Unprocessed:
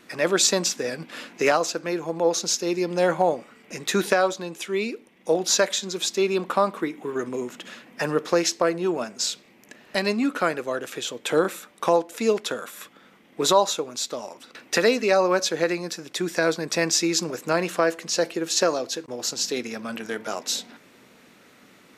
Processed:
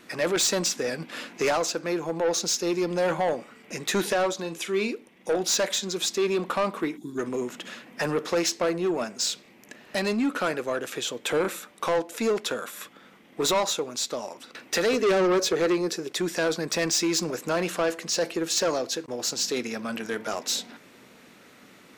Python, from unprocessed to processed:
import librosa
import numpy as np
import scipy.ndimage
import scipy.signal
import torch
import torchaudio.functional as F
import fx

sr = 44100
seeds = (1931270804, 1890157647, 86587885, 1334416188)

y = fx.spec_box(x, sr, start_s=6.97, length_s=0.21, low_hz=380.0, high_hz=3300.0, gain_db=-21)
y = fx.peak_eq(y, sr, hz=400.0, db=14.0, octaves=0.43, at=(14.93, 16.12))
y = 10.0 ** (-20.0 / 20.0) * np.tanh(y / 10.0 ** (-20.0 / 20.0))
y = fx.doubler(y, sr, ms=42.0, db=-10.5, at=(4.38, 4.92), fade=0.02)
y = y * librosa.db_to_amplitude(1.0)